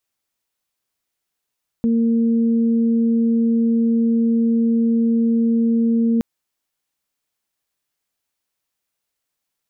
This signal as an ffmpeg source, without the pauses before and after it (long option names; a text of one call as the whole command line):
ffmpeg -f lavfi -i "aevalsrc='0.2*sin(2*PI*230*t)+0.0422*sin(2*PI*460*t)':duration=4.37:sample_rate=44100" out.wav